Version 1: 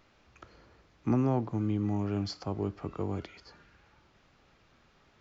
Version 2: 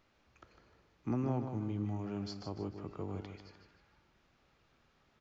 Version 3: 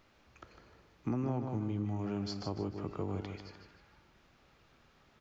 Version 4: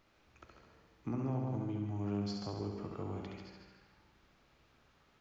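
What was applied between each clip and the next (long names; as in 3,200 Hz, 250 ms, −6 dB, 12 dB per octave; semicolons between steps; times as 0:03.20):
repeating echo 153 ms, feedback 38%, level −8 dB; level −7.5 dB
downward compressor 2.5 to 1, threshold −38 dBFS, peak gain reduction 6.5 dB; level +5.5 dB
flutter between parallel walls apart 11.8 metres, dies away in 0.87 s; level −4.5 dB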